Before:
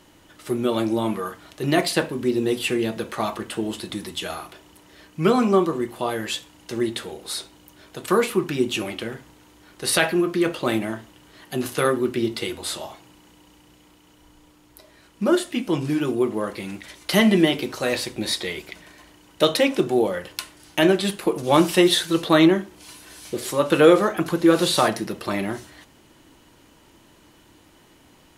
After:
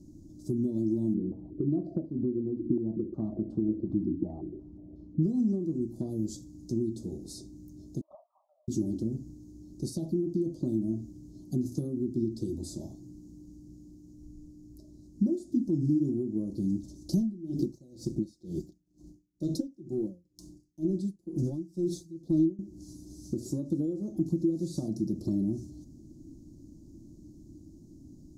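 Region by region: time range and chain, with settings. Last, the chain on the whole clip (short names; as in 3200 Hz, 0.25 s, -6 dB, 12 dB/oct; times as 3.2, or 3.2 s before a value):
1.14–5.23 feedback echo 65 ms, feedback 57%, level -19.5 dB + stepped low-pass 5.5 Hz 310–1800 Hz
8.01–8.68 brick-wall FIR band-pass 560–1400 Hz + envelope flanger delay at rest 2.1 ms, full sweep at -21 dBFS
17.17–22.59 sample leveller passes 1 + comb 5.8 ms, depth 36% + dB-linear tremolo 2.1 Hz, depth 31 dB
whole clip: Chebyshev band-stop 600–6500 Hz, order 3; compressor 6:1, threshold -30 dBFS; EQ curve 320 Hz 0 dB, 470 Hz -23 dB, 4800 Hz -5 dB, 9200 Hz -23 dB; gain +7 dB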